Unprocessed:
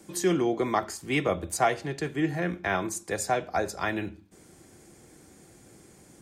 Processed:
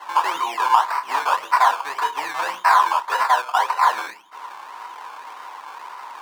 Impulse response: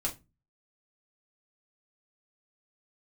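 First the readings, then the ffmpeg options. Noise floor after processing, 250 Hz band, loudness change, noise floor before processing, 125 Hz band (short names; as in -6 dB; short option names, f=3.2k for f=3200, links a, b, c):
-41 dBFS, under -15 dB, +9.0 dB, -55 dBFS, under -25 dB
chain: -filter_complex "[1:a]atrim=start_sample=2205,asetrate=70560,aresample=44100[a];[0:a][a]afir=irnorm=-1:irlink=0,acrossover=split=2000[b][c];[b]alimiter=limit=-21.5dB:level=0:latency=1:release=355[d];[d][c]amix=inputs=2:normalize=0,acrusher=samples=18:mix=1:aa=0.000001:lfo=1:lforange=10.8:lforate=1.8,asplit=2[e][f];[f]highpass=f=720:p=1,volume=10dB,asoftclip=type=tanh:threshold=-19dB[g];[e][g]amix=inputs=2:normalize=0,lowpass=f=4.2k:p=1,volume=-6dB,asplit=2[h][i];[i]acompressor=threshold=-46dB:ratio=6,volume=1dB[j];[h][j]amix=inputs=2:normalize=0,highpass=f=970:t=q:w=8.3,volume=4.5dB"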